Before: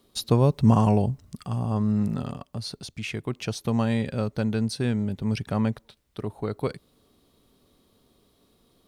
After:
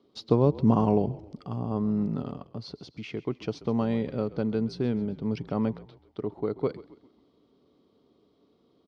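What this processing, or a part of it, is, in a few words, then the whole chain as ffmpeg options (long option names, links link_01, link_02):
frequency-shifting delay pedal into a guitar cabinet: -filter_complex "[0:a]asplit=5[link_01][link_02][link_03][link_04][link_05];[link_02]adelay=133,afreqshift=-48,volume=-18dB[link_06];[link_03]adelay=266,afreqshift=-96,volume=-24.7dB[link_07];[link_04]adelay=399,afreqshift=-144,volume=-31.5dB[link_08];[link_05]adelay=532,afreqshift=-192,volume=-38.2dB[link_09];[link_01][link_06][link_07][link_08][link_09]amix=inputs=5:normalize=0,highpass=99,equalizer=frequency=100:width_type=q:width=4:gain=-4,equalizer=frequency=300:width_type=q:width=4:gain=6,equalizer=frequency=430:width_type=q:width=4:gain=5,equalizer=frequency=1700:width_type=q:width=4:gain=-8,equalizer=frequency=2600:width_type=q:width=4:gain=-6,equalizer=frequency=3800:width_type=q:width=4:gain=-6,lowpass=frequency=4500:width=0.5412,lowpass=frequency=4500:width=1.3066,volume=-3dB"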